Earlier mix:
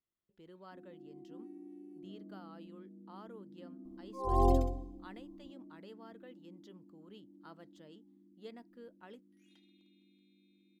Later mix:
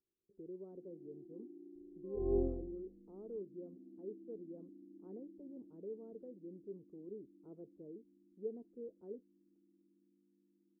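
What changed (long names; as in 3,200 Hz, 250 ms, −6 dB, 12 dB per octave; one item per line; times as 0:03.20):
speech +10.5 dB
second sound: entry −2.10 s
master: add transistor ladder low-pass 450 Hz, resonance 65%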